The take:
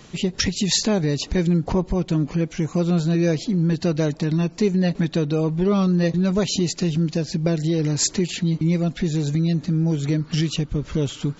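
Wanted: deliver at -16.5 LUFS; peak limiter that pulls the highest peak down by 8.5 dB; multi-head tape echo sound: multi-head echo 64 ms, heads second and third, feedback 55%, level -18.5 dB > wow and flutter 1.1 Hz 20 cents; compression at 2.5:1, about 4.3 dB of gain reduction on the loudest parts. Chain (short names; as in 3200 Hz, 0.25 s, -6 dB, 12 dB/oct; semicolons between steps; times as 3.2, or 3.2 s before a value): compressor 2.5:1, threshold -22 dBFS; limiter -19.5 dBFS; multi-head echo 64 ms, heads second and third, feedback 55%, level -18.5 dB; wow and flutter 1.1 Hz 20 cents; gain +11 dB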